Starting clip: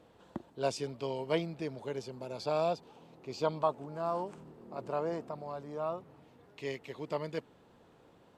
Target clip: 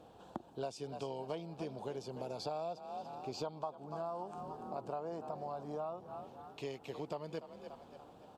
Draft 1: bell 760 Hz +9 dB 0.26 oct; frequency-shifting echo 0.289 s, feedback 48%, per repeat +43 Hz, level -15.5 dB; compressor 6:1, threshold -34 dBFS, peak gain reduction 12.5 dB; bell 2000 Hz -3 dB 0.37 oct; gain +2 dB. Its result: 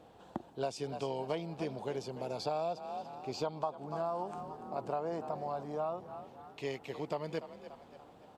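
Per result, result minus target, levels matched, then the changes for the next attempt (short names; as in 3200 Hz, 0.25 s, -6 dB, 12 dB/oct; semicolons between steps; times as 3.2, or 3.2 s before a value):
compressor: peak gain reduction -5 dB; 2000 Hz band +2.0 dB
change: compressor 6:1, threshold -40 dBFS, peak gain reduction 17.5 dB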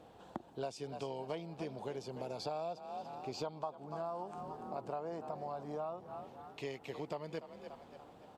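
2000 Hz band +3.0 dB
change: second bell 2000 Hz -11 dB 0.37 oct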